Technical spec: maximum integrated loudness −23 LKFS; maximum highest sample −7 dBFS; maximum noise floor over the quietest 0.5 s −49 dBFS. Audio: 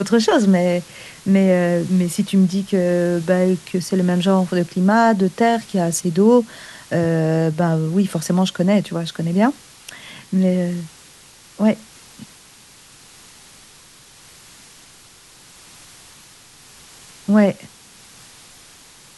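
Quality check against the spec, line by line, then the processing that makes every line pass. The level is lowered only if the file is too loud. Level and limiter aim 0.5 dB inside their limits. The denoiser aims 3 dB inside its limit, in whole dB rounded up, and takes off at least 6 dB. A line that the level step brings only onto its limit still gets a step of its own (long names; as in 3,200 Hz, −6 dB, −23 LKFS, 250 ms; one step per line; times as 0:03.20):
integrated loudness −18.0 LKFS: out of spec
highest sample −4.0 dBFS: out of spec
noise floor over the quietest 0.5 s −46 dBFS: out of spec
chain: level −5.5 dB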